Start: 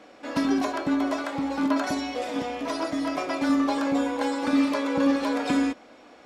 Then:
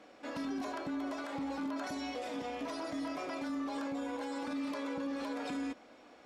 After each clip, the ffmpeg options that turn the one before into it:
ffmpeg -i in.wav -af "alimiter=limit=-24dB:level=0:latency=1:release=46,volume=-7dB" out.wav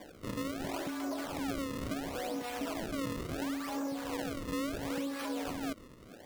ffmpeg -i in.wav -filter_complex "[0:a]acrossover=split=990[link_01][link_02];[link_01]aeval=exprs='val(0)*(1-0.7/2+0.7/2*cos(2*PI*2.6*n/s))':channel_layout=same[link_03];[link_02]aeval=exprs='val(0)*(1-0.7/2-0.7/2*cos(2*PI*2.6*n/s))':channel_layout=same[link_04];[link_03][link_04]amix=inputs=2:normalize=0,acompressor=threshold=-43dB:ratio=3,acrusher=samples=32:mix=1:aa=0.000001:lfo=1:lforange=51.2:lforate=0.72,volume=8.5dB" out.wav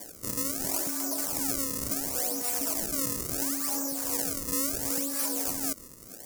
ffmpeg -i in.wav -af "aexciter=amount=11:drive=3:freq=5100" out.wav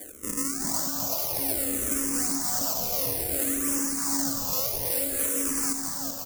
ffmpeg -i in.wav -filter_complex "[0:a]asplit=2[link_01][link_02];[link_02]aecho=0:1:380|722|1030|1307|1556:0.631|0.398|0.251|0.158|0.1[link_03];[link_01][link_03]amix=inputs=2:normalize=0,asplit=2[link_04][link_05];[link_05]afreqshift=-0.58[link_06];[link_04][link_06]amix=inputs=2:normalize=1,volume=4dB" out.wav

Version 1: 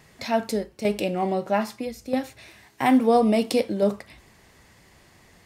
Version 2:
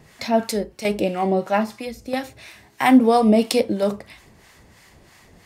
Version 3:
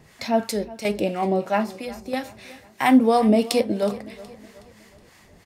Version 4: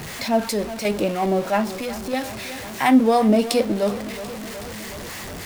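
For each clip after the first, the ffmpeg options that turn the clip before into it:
ffmpeg -i in.wav -filter_complex "[0:a]acrossover=split=750[link_01][link_02];[link_01]aeval=exprs='val(0)*(1-0.7/2+0.7/2*cos(2*PI*3*n/s))':channel_layout=same[link_03];[link_02]aeval=exprs='val(0)*(1-0.7/2-0.7/2*cos(2*PI*3*n/s))':channel_layout=same[link_04];[link_03][link_04]amix=inputs=2:normalize=0,volume=7dB" out.wav
ffmpeg -i in.wav -af "aecho=1:1:369|738|1107|1476:0.112|0.0505|0.0227|0.0102,volume=-2dB" out.wav
ffmpeg -i in.wav -af "aeval=exprs='val(0)+0.5*0.0376*sgn(val(0))':channel_layout=same" out.wav

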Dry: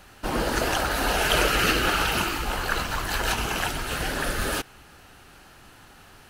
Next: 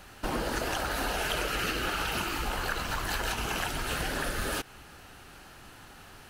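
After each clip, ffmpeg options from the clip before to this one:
ffmpeg -i in.wav -af "acompressor=threshold=-28dB:ratio=6" out.wav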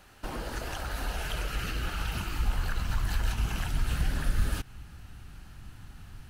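ffmpeg -i in.wav -af "asubboost=boost=8.5:cutoff=160,volume=-6dB" out.wav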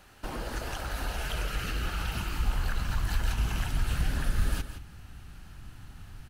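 ffmpeg -i in.wav -af "aecho=1:1:169:0.282" out.wav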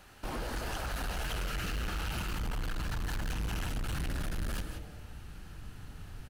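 ffmpeg -i in.wav -filter_complex "[0:a]volume=31.5dB,asoftclip=hard,volume=-31.5dB,asplit=7[link_01][link_02][link_03][link_04][link_05][link_06][link_07];[link_02]adelay=91,afreqshift=140,volume=-19dB[link_08];[link_03]adelay=182,afreqshift=280,volume=-22.9dB[link_09];[link_04]adelay=273,afreqshift=420,volume=-26.8dB[link_10];[link_05]adelay=364,afreqshift=560,volume=-30.6dB[link_11];[link_06]adelay=455,afreqshift=700,volume=-34.5dB[link_12];[link_07]adelay=546,afreqshift=840,volume=-38.4dB[link_13];[link_01][link_08][link_09][link_10][link_11][link_12][link_13]amix=inputs=7:normalize=0" out.wav

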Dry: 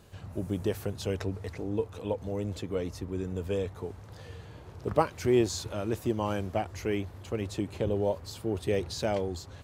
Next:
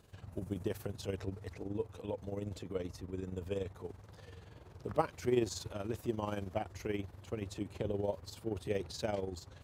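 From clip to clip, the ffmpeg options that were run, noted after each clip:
ffmpeg -i in.wav -af "tremolo=f=21:d=0.621,volume=-4.5dB" out.wav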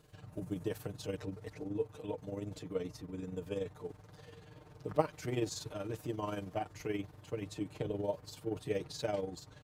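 ffmpeg -i in.wav -af "aecho=1:1:6.6:0.79,volume=-2dB" out.wav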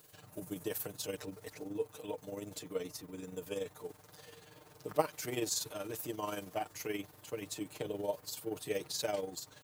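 ffmpeg -i in.wav -af "aemphasis=mode=production:type=bsi,volume=1dB" out.wav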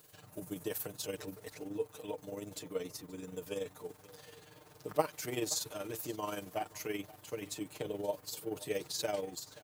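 ffmpeg -i in.wav -af "aecho=1:1:527:0.1" out.wav

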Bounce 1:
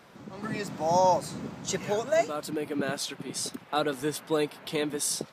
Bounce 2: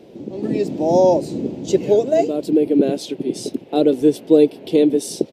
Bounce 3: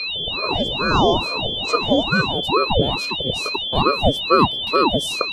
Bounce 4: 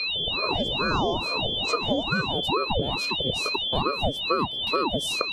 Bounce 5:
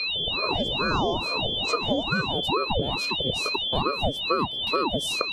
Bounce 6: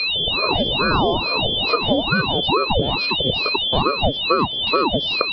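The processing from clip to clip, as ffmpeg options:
ffmpeg -i in.wav -af "firequalizer=gain_entry='entry(170,0);entry(330,12);entry(1200,-21);entry(2700,-5);entry(7700,-10)':delay=0.05:min_phase=1,volume=8dB" out.wav
ffmpeg -i in.wav -af "bandreject=frequency=190.6:width_type=h:width=4,bandreject=frequency=381.2:width_type=h:width=4,bandreject=frequency=571.8:width_type=h:width=4,bandreject=frequency=762.4:width_type=h:width=4,bandreject=frequency=953:width_type=h:width=4,bandreject=frequency=1143.6:width_type=h:width=4,bandreject=frequency=1334.2:width_type=h:width=4,bandreject=frequency=1524.8:width_type=h:width=4,bandreject=frequency=1715.4:width_type=h:width=4,bandreject=frequency=1906:width_type=h:width=4,bandreject=frequency=2096.6:width_type=h:width=4,bandreject=frequency=2287.2:width_type=h:width=4,bandreject=frequency=2477.8:width_type=h:width=4,bandreject=frequency=2668.4:width_type=h:width=4,bandreject=frequency=2859:width_type=h:width=4,bandreject=frequency=3049.6:width_type=h:width=4,bandreject=frequency=3240.2:width_type=h:width=4,bandreject=frequency=3430.8:width_type=h:width=4,bandreject=frequency=3621.4:width_type=h:width=4,bandreject=frequency=3812:width_type=h:width=4,bandreject=frequency=4002.6:width_type=h:width=4,bandreject=frequency=4193.2:width_type=h:width=4,bandreject=frequency=4383.8:width_type=h:width=4,bandreject=frequency=4574.4:width_type=h:width=4,bandreject=frequency=4765:width_type=h:width=4,bandreject=frequency=4955.6:width_type=h:width=4,bandreject=frequency=5146.2:width_type=h:width=4,bandreject=frequency=5336.8:width_type=h:width=4,bandreject=frequency=5527.4:width_type=h:width=4,bandreject=frequency=5718:width_type=h:width=4,bandreject=frequency=5908.6:width_type=h:width=4,bandreject=frequency=6099.2:width_type=h:width=4,bandreject=frequency=6289.8:width_type=h:width=4,bandreject=frequency=6480.4:width_type=h:width=4,bandreject=frequency=6671:width_type=h:width=4,bandreject=frequency=6861.6:width_type=h:width=4,bandreject=frequency=7052.2:width_type=h:width=4,aeval=exprs='val(0)+0.1*sin(2*PI*3300*n/s)':channel_layout=same,aeval=exprs='val(0)*sin(2*PI*490*n/s+490*0.75/2.3*sin(2*PI*2.3*n/s))':channel_layout=same" out.wav
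ffmpeg -i in.wav -af "acompressor=threshold=-19dB:ratio=5,volume=-2dB" out.wav
ffmpeg -i in.wav -af anull out.wav
ffmpeg -i in.wav -af "aresample=11025,aresample=44100,volume=6.5dB" out.wav

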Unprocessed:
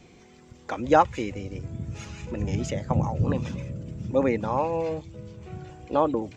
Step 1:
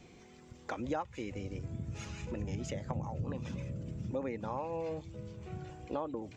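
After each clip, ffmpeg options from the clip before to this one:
ffmpeg -i in.wav -af "acompressor=threshold=-31dB:ratio=4,volume=-4dB" out.wav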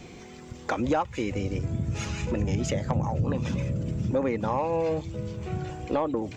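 ffmpeg -i in.wav -af "aeval=exprs='0.0944*(cos(1*acos(clip(val(0)/0.0944,-1,1)))-cos(1*PI/2))+0.00841*(cos(5*acos(clip(val(0)/0.0944,-1,1)))-cos(5*PI/2))':channel_layout=same,volume=8.5dB" out.wav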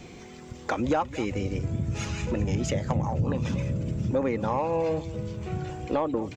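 ffmpeg -i in.wav -filter_complex "[0:a]asplit=2[link_01][link_02];[link_02]adelay=221.6,volume=-17dB,highshelf=frequency=4000:gain=-4.99[link_03];[link_01][link_03]amix=inputs=2:normalize=0" out.wav

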